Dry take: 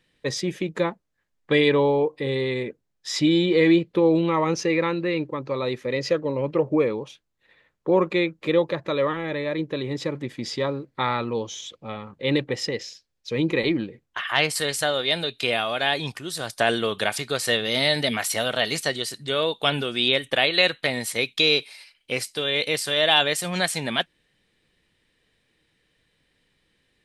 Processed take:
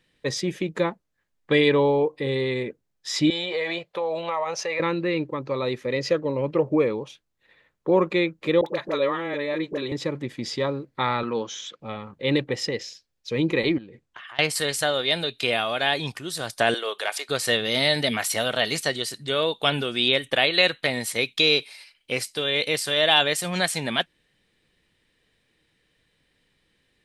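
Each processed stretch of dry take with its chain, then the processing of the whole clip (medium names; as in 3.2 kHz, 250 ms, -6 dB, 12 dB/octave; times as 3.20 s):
3.30–4.80 s: resonant low shelf 440 Hz -13.5 dB, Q 3 + compression 4:1, threshold -23 dBFS
8.61–9.92 s: high-pass 220 Hz + upward compressor, threshold -25 dBFS + phase dispersion highs, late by 54 ms, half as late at 800 Hz
11.23–11.80 s: Chebyshev band-pass 180–6400 Hz + peaking EQ 1.5 kHz +12.5 dB 0.73 oct
13.78–14.39 s: steep low-pass 9.9 kHz + compression, threshold -39 dBFS
16.74–17.29 s: high-pass 430 Hz 24 dB/octave + transient shaper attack -7 dB, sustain -3 dB
whole clip: none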